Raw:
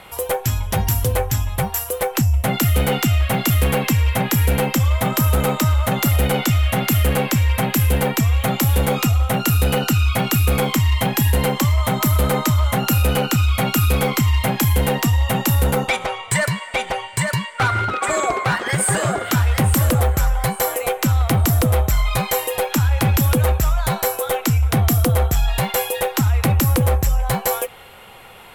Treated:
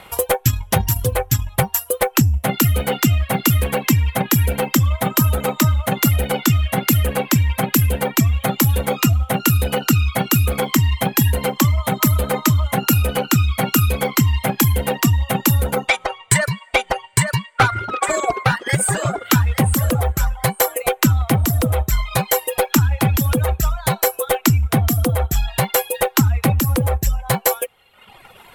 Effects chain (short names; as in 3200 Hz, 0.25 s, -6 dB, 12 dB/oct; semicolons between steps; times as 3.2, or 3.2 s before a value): reverb removal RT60 1.2 s; transient shaper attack +7 dB, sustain -5 dB